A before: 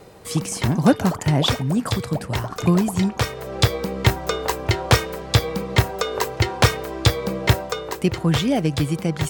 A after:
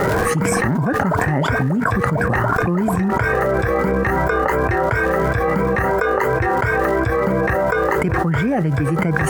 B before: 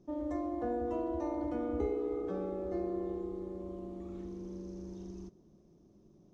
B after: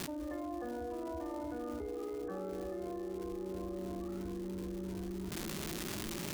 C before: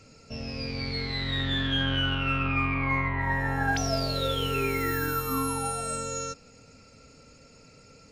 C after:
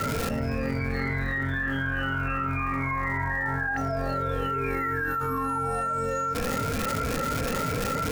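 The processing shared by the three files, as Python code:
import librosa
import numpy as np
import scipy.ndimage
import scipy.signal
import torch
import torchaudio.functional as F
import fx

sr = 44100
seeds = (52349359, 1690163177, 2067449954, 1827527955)

y = fx.spec_ripple(x, sr, per_octave=1.7, drift_hz=2.9, depth_db=12)
y = fx.high_shelf_res(y, sr, hz=2500.0, db=-13.5, q=3.0)
y = fx.rider(y, sr, range_db=4, speed_s=0.5)
y = fx.dmg_crackle(y, sr, seeds[0], per_s=410.0, level_db=-41.0)
y = fx.env_flatten(y, sr, amount_pct=100)
y = y * 10.0 ** (-9.5 / 20.0)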